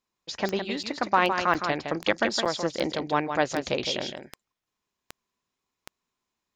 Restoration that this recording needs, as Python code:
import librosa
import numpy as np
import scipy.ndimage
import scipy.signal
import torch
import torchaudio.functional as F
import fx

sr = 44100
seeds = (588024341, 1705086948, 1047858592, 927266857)

y = fx.fix_declick_ar(x, sr, threshold=10.0)
y = fx.fix_interpolate(y, sr, at_s=(0.83, 1.54, 2.45), length_ms=7.0)
y = fx.fix_echo_inverse(y, sr, delay_ms=162, level_db=-7.0)